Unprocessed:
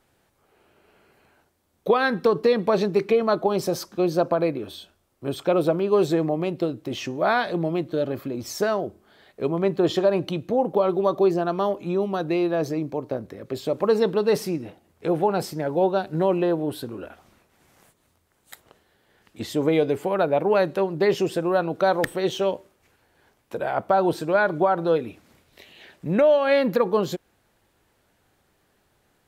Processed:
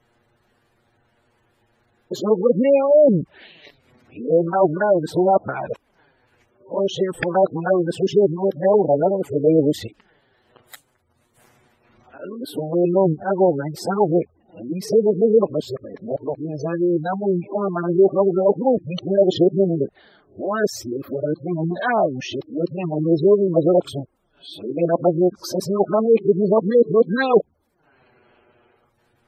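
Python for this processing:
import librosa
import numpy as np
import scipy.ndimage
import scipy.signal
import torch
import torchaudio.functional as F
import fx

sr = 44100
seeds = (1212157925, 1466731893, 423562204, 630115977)

y = np.flip(x).copy()
y = fx.env_flanger(y, sr, rest_ms=8.6, full_db=-17.0)
y = fx.spec_gate(y, sr, threshold_db=-20, keep='strong')
y = y * 10.0 ** (6.0 / 20.0)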